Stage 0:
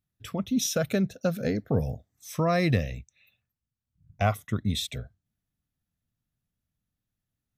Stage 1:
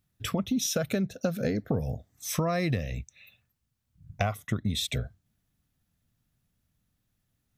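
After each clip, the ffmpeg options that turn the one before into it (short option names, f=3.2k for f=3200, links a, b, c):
-af "acompressor=threshold=-34dB:ratio=6,volume=8.5dB"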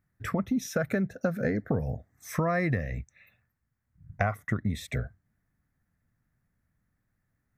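-af "highshelf=f=2.4k:t=q:w=3:g=-8.5"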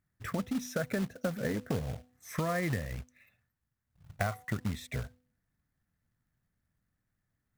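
-af "bandreject=f=249.3:t=h:w=4,bandreject=f=498.6:t=h:w=4,bandreject=f=747.9:t=h:w=4,bandreject=f=997.2:t=h:w=4,acrusher=bits=3:mode=log:mix=0:aa=0.000001,volume=-5dB"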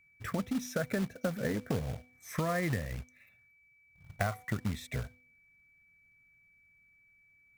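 -af "aeval=exprs='val(0)+0.000708*sin(2*PI*2300*n/s)':c=same"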